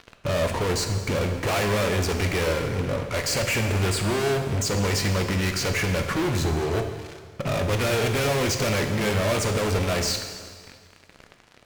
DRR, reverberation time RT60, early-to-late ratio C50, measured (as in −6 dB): 5.0 dB, 1.8 s, 7.0 dB